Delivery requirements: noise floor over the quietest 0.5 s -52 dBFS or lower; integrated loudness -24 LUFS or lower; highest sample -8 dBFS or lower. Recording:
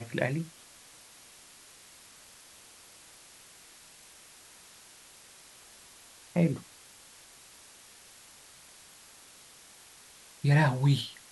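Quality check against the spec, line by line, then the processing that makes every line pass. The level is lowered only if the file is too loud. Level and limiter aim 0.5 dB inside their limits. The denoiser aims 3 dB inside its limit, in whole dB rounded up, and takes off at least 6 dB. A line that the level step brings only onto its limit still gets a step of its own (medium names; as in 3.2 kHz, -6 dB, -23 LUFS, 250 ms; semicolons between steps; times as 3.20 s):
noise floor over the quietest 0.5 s -54 dBFS: pass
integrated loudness -28.5 LUFS: pass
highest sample -12.0 dBFS: pass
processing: none needed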